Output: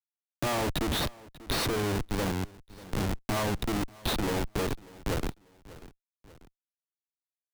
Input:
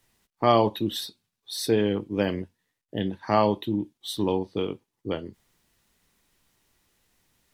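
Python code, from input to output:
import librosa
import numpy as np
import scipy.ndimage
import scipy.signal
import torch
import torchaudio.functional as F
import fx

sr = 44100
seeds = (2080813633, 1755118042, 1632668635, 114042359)

p1 = scipy.signal.sosfilt(scipy.signal.butter(2, 54.0, 'highpass', fs=sr, output='sos'), x)
p2 = fx.schmitt(p1, sr, flips_db=-32.0)
p3 = p2 + fx.echo_feedback(p2, sr, ms=590, feedback_pct=28, wet_db=-24.0, dry=0)
y = fx.band_squash(p3, sr, depth_pct=40)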